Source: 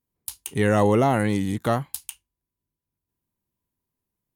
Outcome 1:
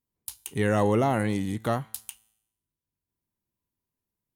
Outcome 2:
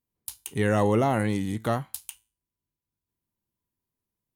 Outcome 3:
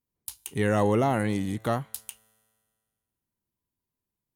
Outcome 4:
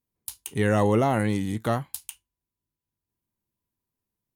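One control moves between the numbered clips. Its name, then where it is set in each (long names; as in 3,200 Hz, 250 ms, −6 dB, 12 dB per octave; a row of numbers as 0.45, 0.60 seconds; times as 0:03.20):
tuned comb filter, decay: 0.86, 0.37, 2, 0.15 seconds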